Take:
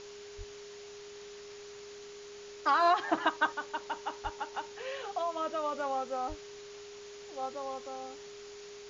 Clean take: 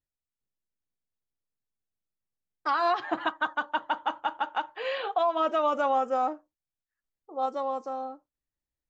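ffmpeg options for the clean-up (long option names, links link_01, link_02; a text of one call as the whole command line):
ffmpeg -i in.wav -filter_complex "[0:a]bandreject=frequency=410:width=30,asplit=3[link_01][link_02][link_03];[link_01]afade=type=out:start_time=0.37:duration=0.02[link_04];[link_02]highpass=frequency=140:width=0.5412,highpass=frequency=140:width=1.3066,afade=type=in:start_time=0.37:duration=0.02,afade=type=out:start_time=0.49:duration=0.02[link_05];[link_03]afade=type=in:start_time=0.49:duration=0.02[link_06];[link_04][link_05][link_06]amix=inputs=3:normalize=0,asplit=3[link_07][link_08][link_09];[link_07]afade=type=out:start_time=4.23:duration=0.02[link_10];[link_08]highpass=frequency=140:width=0.5412,highpass=frequency=140:width=1.3066,afade=type=in:start_time=4.23:duration=0.02,afade=type=out:start_time=4.35:duration=0.02[link_11];[link_09]afade=type=in:start_time=4.35:duration=0.02[link_12];[link_10][link_11][link_12]amix=inputs=3:normalize=0,asplit=3[link_13][link_14][link_15];[link_13]afade=type=out:start_time=6.28:duration=0.02[link_16];[link_14]highpass=frequency=140:width=0.5412,highpass=frequency=140:width=1.3066,afade=type=in:start_time=6.28:duration=0.02,afade=type=out:start_time=6.4:duration=0.02[link_17];[link_15]afade=type=in:start_time=6.4:duration=0.02[link_18];[link_16][link_17][link_18]amix=inputs=3:normalize=0,afwtdn=0.0035,asetnsamples=nb_out_samples=441:pad=0,asendcmd='3.52 volume volume 8.5dB',volume=0dB" out.wav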